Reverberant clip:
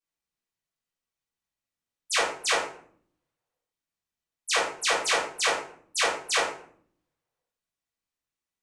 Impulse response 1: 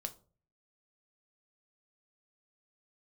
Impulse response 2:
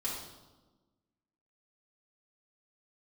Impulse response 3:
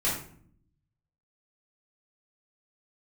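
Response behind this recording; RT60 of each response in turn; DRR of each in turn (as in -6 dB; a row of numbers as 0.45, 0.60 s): 3; 0.40, 1.2, 0.60 s; 6.5, -7.0, -9.5 dB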